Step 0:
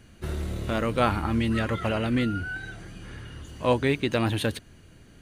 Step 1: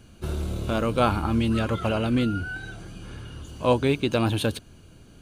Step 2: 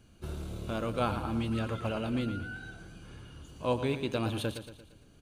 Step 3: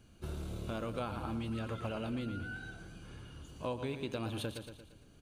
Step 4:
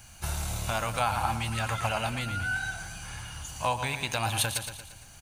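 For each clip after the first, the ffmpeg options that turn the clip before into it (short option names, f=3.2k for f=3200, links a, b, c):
-af "equalizer=f=1.9k:t=o:w=0.25:g=-14.5,volume=2dB"
-af "aecho=1:1:115|230|345|460|575:0.299|0.146|0.0717|0.0351|0.0172,volume=-9dB"
-af "acompressor=threshold=-33dB:ratio=5,volume=-1.5dB"
-af "firequalizer=gain_entry='entry(110,0);entry(160,-4);entry(230,-10);entry(390,-14);entry(790,10);entry(1200,3);entry(1900,10);entry(3300,4);entry(6000,14)':delay=0.05:min_phase=1,volume=8.5dB"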